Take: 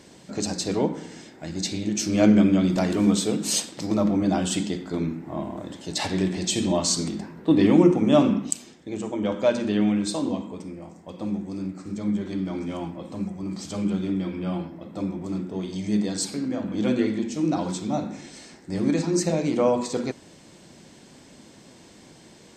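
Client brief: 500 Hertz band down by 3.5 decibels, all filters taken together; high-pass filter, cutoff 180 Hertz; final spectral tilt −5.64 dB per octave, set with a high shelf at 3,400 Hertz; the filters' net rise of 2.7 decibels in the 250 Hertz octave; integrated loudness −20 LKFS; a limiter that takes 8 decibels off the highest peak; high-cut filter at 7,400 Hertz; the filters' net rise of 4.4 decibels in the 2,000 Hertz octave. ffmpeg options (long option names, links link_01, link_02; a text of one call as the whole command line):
ffmpeg -i in.wav -af "highpass=180,lowpass=7400,equalizer=frequency=250:width_type=o:gain=7.5,equalizer=frequency=500:width_type=o:gain=-8.5,equalizer=frequency=2000:width_type=o:gain=7.5,highshelf=frequency=3400:gain=-5,volume=5dB,alimiter=limit=-7dB:level=0:latency=1" out.wav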